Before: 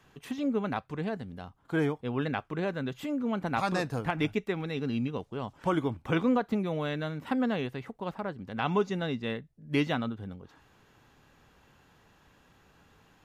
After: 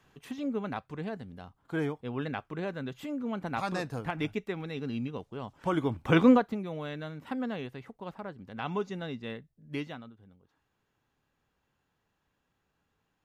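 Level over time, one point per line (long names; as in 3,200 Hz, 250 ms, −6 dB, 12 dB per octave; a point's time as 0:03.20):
0:05.57 −3.5 dB
0:06.30 +7 dB
0:06.55 −5.5 dB
0:09.66 −5.5 dB
0:10.12 −17 dB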